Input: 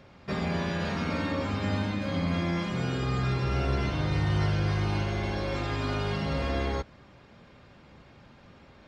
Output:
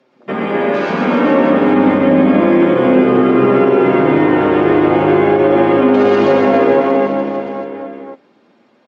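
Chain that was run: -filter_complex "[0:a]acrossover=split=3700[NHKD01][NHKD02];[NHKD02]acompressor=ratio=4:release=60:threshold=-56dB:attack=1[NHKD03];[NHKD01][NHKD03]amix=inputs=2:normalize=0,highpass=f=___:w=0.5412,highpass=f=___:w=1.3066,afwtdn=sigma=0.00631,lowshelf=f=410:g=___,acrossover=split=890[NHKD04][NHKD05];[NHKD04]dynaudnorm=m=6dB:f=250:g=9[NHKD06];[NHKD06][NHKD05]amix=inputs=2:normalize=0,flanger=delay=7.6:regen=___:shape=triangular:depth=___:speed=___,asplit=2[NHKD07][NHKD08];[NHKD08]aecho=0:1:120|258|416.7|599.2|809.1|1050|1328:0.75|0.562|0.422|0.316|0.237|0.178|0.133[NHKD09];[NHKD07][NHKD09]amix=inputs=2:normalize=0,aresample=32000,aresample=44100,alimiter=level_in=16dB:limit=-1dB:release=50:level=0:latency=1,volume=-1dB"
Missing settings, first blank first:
260, 260, 10, 35, 5.7, 0.34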